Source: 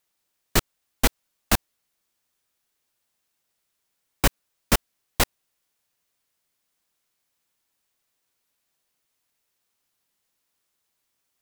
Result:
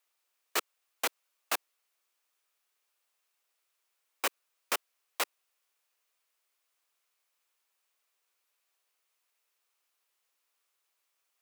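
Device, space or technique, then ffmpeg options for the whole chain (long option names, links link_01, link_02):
laptop speaker: -af "highpass=frequency=390:width=0.5412,highpass=frequency=390:width=1.3066,equalizer=frequency=1200:width_type=o:width=0.5:gain=4.5,equalizer=frequency=2500:width_type=o:width=0.54:gain=4,alimiter=limit=-14.5dB:level=0:latency=1:release=11,volume=-3.5dB"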